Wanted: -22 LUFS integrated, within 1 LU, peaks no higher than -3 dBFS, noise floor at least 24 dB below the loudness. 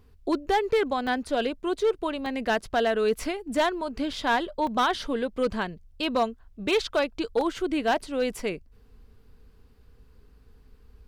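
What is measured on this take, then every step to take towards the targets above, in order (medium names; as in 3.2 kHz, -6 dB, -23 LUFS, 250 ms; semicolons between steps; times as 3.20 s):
clipped samples 0.7%; clipping level -17.0 dBFS; dropouts 5; longest dropout 1.8 ms; loudness -27.0 LUFS; peak level -17.0 dBFS; loudness target -22.0 LUFS
-> clip repair -17 dBFS; interpolate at 1.07/2.26/4.13/4.67/7.41 s, 1.8 ms; trim +5 dB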